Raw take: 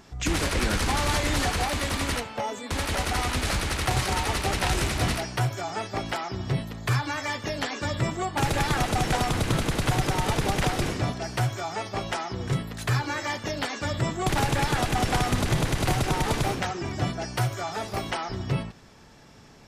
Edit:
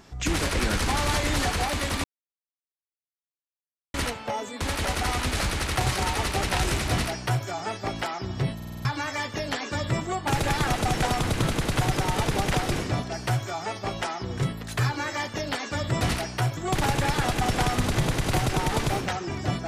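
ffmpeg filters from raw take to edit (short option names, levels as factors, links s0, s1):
-filter_complex "[0:a]asplit=10[s0][s1][s2][s3][s4][s5][s6][s7][s8][s9];[s0]atrim=end=2.04,asetpts=PTS-STARTPTS,afade=t=out:st=2.036:d=0.004:c=hsin,apad=pad_dur=1.9[s10];[s1]atrim=start=2.04:end=6.702,asetpts=PTS-STARTPTS,afade=t=in:d=0.004:c=hsin[s11];[s2]atrim=start=6.648:end=6.702[s12];[s3]atrim=start=6.648:end=6.702[s13];[s4]atrim=start=6.648:end=6.702[s14];[s5]atrim=start=6.648:end=6.702[s15];[s6]atrim=start=6.648:end=6.702[s16];[s7]atrim=start=6.948:end=14.112[s17];[s8]atrim=start=4.998:end=5.562[s18];[s9]atrim=start=14.108[s19];[s10][s11]concat=n=2:v=0:a=1[s20];[s20][s12]acrossfade=d=0.004:c1=hsin:c2=hsin[s21];[s21][s13]acrossfade=d=0.004:c1=hsin:c2=hsin[s22];[s22][s14]acrossfade=d=0.004:c1=hsin:c2=hsin[s23];[s23][s15]acrossfade=d=0.004:c1=hsin:c2=hsin[s24];[s24][s16]acrossfade=d=0.004:c1=hsin:c2=hsin[s25];[s25][s17]acrossfade=d=0.004:c1=hsin:c2=hsin[s26];[s26][s18]acrossfade=d=0.004:c1=hsin:c2=hsin[s27];[s27][s19]acrossfade=d=0.004:c1=hsin:c2=hsin"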